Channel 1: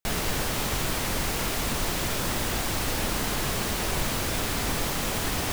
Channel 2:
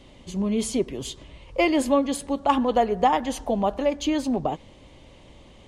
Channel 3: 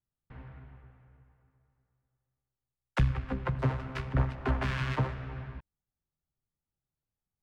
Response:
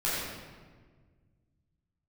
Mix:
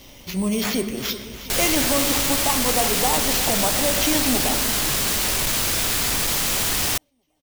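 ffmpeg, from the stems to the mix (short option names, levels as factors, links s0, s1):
-filter_complex "[0:a]asoftclip=type=hard:threshold=0.0668,adelay=1450,volume=1.06[s0];[1:a]alimiter=limit=0.133:level=0:latency=1:release=342,acrusher=samples=5:mix=1:aa=0.000001,volume=1.06,asplit=3[s1][s2][s3];[s2]volume=0.15[s4];[s3]volume=0.211[s5];[3:a]atrim=start_sample=2205[s6];[s4][s6]afir=irnorm=-1:irlink=0[s7];[s5]aecho=0:1:356|712|1068|1424|1780|2136|2492|2848|3204:1|0.59|0.348|0.205|0.121|0.0715|0.0422|0.0249|0.0147[s8];[s0][s1][s7][s8]amix=inputs=4:normalize=0,highshelf=f=2000:g=11"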